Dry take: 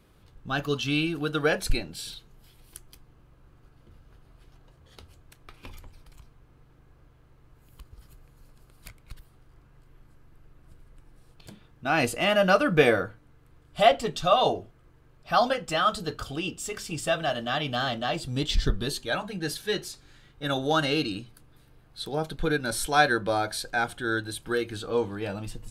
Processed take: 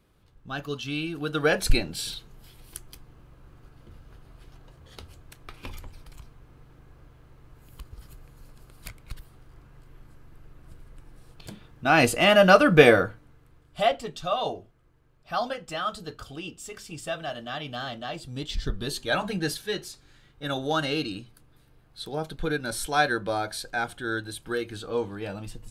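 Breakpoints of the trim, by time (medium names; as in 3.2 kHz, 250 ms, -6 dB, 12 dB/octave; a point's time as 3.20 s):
0.99 s -5 dB
1.73 s +5 dB
13.03 s +5 dB
14.06 s -6 dB
18.60 s -6 dB
19.31 s +6 dB
19.67 s -2 dB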